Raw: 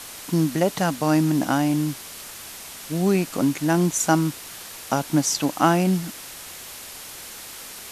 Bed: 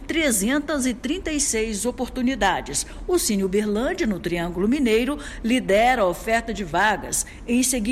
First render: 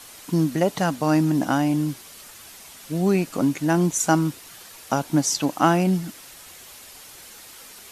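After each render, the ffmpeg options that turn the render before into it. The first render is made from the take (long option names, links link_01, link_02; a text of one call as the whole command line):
ffmpeg -i in.wav -af "afftdn=noise_reduction=7:noise_floor=-39" out.wav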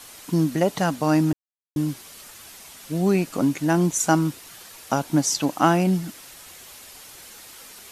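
ffmpeg -i in.wav -filter_complex "[0:a]asplit=3[link_01][link_02][link_03];[link_01]atrim=end=1.33,asetpts=PTS-STARTPTS,afade=type=out:start_time=1.326:duration=0.004:curve=hsin[link_04];[link_02]atrim=start=1.33:end=1.76,asetpts=PTS-STARTPTS,volume=0[link_05];[link_03]atrim=start=1.76,asetpts=PTS-STARTPTS,afade=type=in:duration=0.004:curve=hsin[link_06];[link_04][link_05][link_06]concat=n=3:v=0:a=1" out.wav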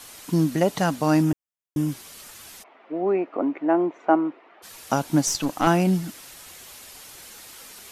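ffmpeg -i in.wav -filter_complex "[0:a]asettb=1/sr,asplit=3[link_01][link_02][link_03];[link_01]atrim=end=1.224[link_04];[link_02]atrim=start=1.22:end=1.92,asetpts=PTS-STARTPTS,afade=type=in:duration=0.004:curve=qsin,afade=type=out:start_time=0.696:duration=0.004:curve=qsin,equalizer=frequency=4200:width_type=o:width=0.25:gain=-12.5[link_05];[link_03]atrim=start=1.916[link_06];[link_04][link_05]acrossfade=duration=0.004:curve1=hsin:curve2=qsin[link_07];[link_07][link_06]acrossfade=duration=0.004:curve1=qsin:curve2=hsin,asplit=3[link_08][link_09][link_10];[link_08]afade=type=out:start_time=2.62:duration=0.02[link_11];[link_09]highpass=frequency=300:width=0.5412,highpass=frequency=300:width=1.3066,equalizer=frequency=340:width_type=q:width=4:gain=3,equalizer=frequency=680:width_type=q:width=4:gain=5,equalizer=frequency=1600:width_type=q:width=4:gain=-7,lowpass=frequency=2000:width=0.5412,lowpass=frequency=2000:width=1.3066,afade=type=in:start_time=2.62:duration=0.02,afade=type=out:start_time=4.62:duration=0.02[link_12];[link_10]afade=type=in:start_time=4.62:duration=0.02[link_13];[link_11][link_12][link_13]amix=inputs=3:normalize=0,asettb=1/sr,asplit=3[link_14][link_15][link_16];[link_14]atrim=end=5.274[link_17];[link_15]atrim=start=5.27:end=5.67,asetpts=PTS-STARTPTS,afade=type=in:duration=0.004:curve=qsin,afade=type=out:start_time=0.396:duration=0.004:curve=qsin,aeval=exprs='(tanh(4.47*val(0)+0.4)-tanh(0.4))/4.47':channel_layout=same[link_18];[link_16]atrim=start=5.666[link_19];[link_17][link_18]acrossfade=duration=0.004:curve1=hsin:curve2=qsin[link_20];[link_20][link_19]acrossfade=duration=0.004:curve1=qsin:curve2=hsin" out.wav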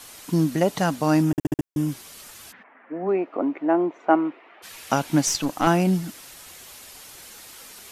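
ffmpeg -i in.wav -filter_complex "[0:a]asplit=3[link_01][link_02][link_03];[link_01]afade=type=out:start_time=2.51:duration=0.02[link_04];[link_02]highpass=150,equalizer=frequency=180:width_type=q:width=4:gain=4,equalizer=frequency=250:width_type=q:width=4:gain=7,equalizer=frequency=370:width_type=q:width=4:gain=-8,equalizer=frequency=670:width_type=q:width=4:gain=-5,equalizer=frequency=1700:width_type=q:width=4:gain=10,lowpass=frequency=2400:width=0.5412,lowpass=frequency=2400:width=1.3066,afade=type=in:start_time=2.51:duration=0.02,afade=type=out:start_time=3.07:duration=0.02[link_05];[link_03]afade=type=in:start_time=3.07:duration=0.02[link_06];[link_04][link_05][link_06]amix=inputs=3:normalize=0,asettb=1/sr,asplit=3[link_07][link_08][link_09];[link_07]atrim=end=4.104[link_10];[link_08]atrim=start=4.1:end=5.4,asetpts=PTS-STARTPTS,afade=type=in:duration=0.004:curve=qsin,afade=type=out:start_time=1.296:duration=0.004:curve=qsin,equalizer=frequency=2400:width_type=o:width=1.4:gain=6[link_11];[link_09]atrim=start=5.396[link_12];[link_10][link_11]acrossfade=duration=0.004:curve1=hsin:curve2=qsin[link_13];[link_13][link_12]acrossfade=duration=0.004:curve1=qsin:curve2=hsin,asplit=6[link_14][link_15][link_16][link_17][link_18][link_19];[link_14]atrim=end=1.382[link_20];[link_15]atrim=start=1.308:end=1.382[link_21];[link_16]atrim=start=1.308:end=1.382[link_22];[link_17]atrim=start=1.308:end=1.382[link_23];[link_18]atrim=start=1.308:end=1.382[link_24];[link_19]atrim=start=1.658[link_25];[link_20][link_21]acrossfade=duration=0.004:curve1=hsin:curve2=hsin[link_26];[link_26][link_22]acrossfade=duration=0.004:curve1=hsin:curve2=hsin[link_27];[link_27][link_23]acrossfade=duration=0.004:curve1=hsin:curve2=hsin[link_28];[link_28][link_24]acrossfade=duration=0.004:curve1=hsin:curve2=hsin[link_29];[link_29][link_25]acrossfade=duration=0.004:curve1=hsin:curve2=hsin" out.wav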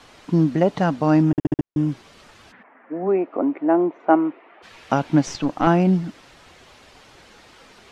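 ffmpeg -i in.wav -af "lowpass=4200,tiltshelf=frequency=1500:gain=3.5" out.wav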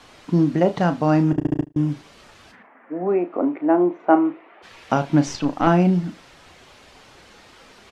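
ffmpeg -i in.wav -filter_complex "[0:a]asplit=2[link_01][link_02];[link_02]adelay=34,volume=-10dB[link_03];[link_01][link_03]amix=inputs=2:normalize=0,aecho=1:1:77|154:0.0668|0.0127" out.wav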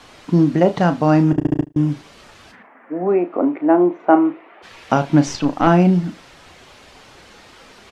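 ffmpeg -i in.wav -af "volume=3.5dB,alimiter=limit=-1dB:level=0:latency=1" out.wav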